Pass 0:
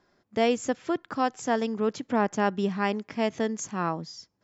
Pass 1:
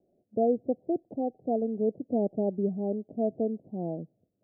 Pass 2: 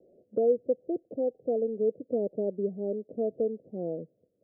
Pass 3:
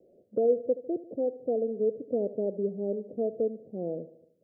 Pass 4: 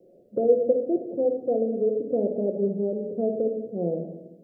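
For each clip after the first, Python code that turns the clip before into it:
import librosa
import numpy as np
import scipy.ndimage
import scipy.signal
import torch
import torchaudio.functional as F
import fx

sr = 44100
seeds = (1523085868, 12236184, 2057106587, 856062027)

y1 = scipy.signal.sosfilt(scipy.signal.butter(12, 700.0, 'lowpass', fs=sr, output='sos'), x)
y1 = fx.low_shelf(y1, sr, hz=82.0, db=-11.5)
y2 = fx.lowpass_res(y1, sr, hz=500.0, q=4.9)
y2 = fx.band_squash(y2, sr, depth_pct=40)
y2 = F.gain(torch.from_numpy(y2), -8.5).numpy()
y3 = fx.echo_feedback(y2, sr, ms=75, feedback_pct=54, wet_db=-16.0)
y4 = fx.room_shoebox(y3, sr, seeds[0], volume_m3=450.0, walls='mixed', distance_m=0.9)
y4 = F.gain(torch.from_numpy(y4), 3.5).numpy()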